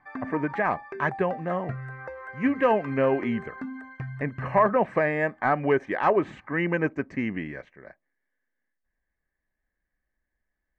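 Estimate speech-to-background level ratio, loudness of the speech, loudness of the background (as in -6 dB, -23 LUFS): 12.5 dB, -26.0 LUFS, -38.5 LUFS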